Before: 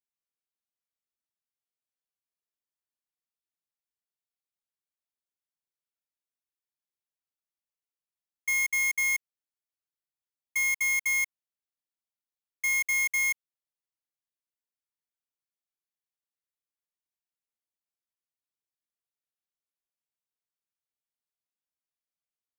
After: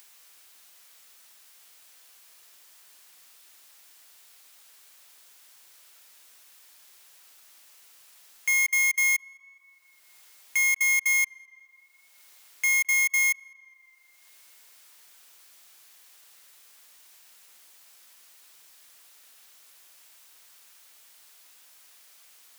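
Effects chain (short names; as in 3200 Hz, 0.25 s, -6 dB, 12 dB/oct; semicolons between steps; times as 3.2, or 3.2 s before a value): HPF 1100 Hz 6 dB/oct; upward compressor, threshold -32 dBFS; tape echo 0.209 s, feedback 89%, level -24 dB, low-pass 2200 Hz; gain +4.5 dB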